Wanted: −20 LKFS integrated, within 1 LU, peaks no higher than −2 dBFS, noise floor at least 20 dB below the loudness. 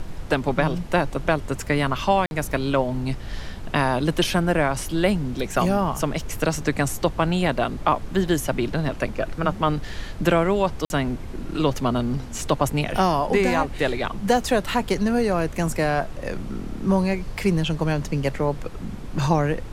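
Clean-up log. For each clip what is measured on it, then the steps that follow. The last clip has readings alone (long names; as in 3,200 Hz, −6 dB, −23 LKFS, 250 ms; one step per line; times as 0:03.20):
number of dropouts 2; longest dropout 51 ms; background noise floor −35 dBFS; target noise floor −44 dBFS; integrated loudness −23.5 LKFS; sample peak −5.5 dBFS; target loudness −20.0 LKFS
→ repair the gap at 0:02.26/0:10.85, 51 ms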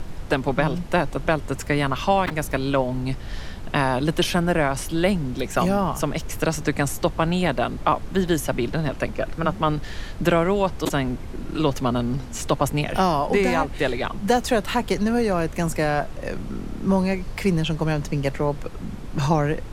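number of dropouts 0; background noise floor −34 dBFS; target noise floor −44 dBFS
→ noise reduction from a noise print 10 dB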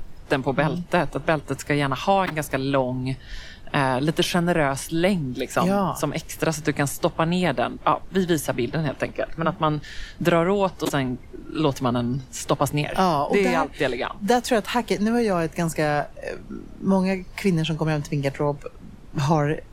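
background noise floor −43 dBFS; target noise floor −44 dBFS
→ noise reduction from a noise print 6 dB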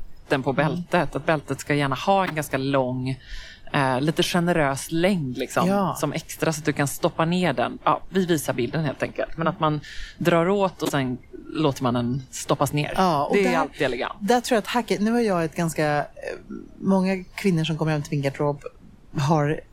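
background noise floor −47 dBFS; integrated loudness −23.5 LKFS; sample peak −6.0 dBFS; target loudness −20.0 LKFS
→ level +3.5 dB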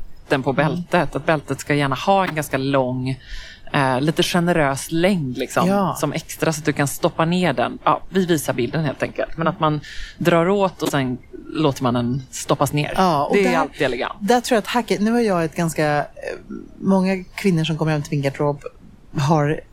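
integrated loudness −20.0 LKFS; sample peak −2.5 dBFS; background noise floor −43 dBFS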